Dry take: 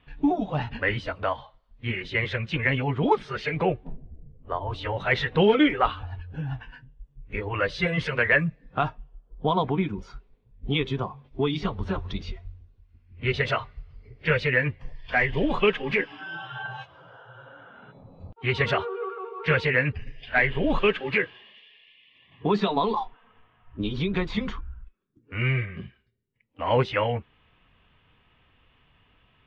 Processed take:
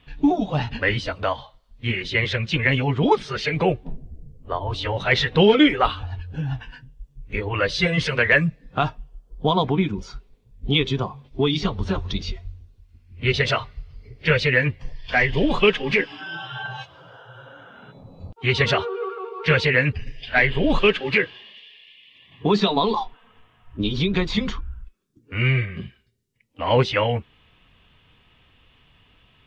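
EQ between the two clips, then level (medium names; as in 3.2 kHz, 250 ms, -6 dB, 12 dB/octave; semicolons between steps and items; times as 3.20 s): tilt shelf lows +5 dB, about 1.1 kHz; treble shelf 3.3 kHz +11.5 dB; peaking EQ 5.3 kHz +9 dB 2.2 oct; 0.0 dB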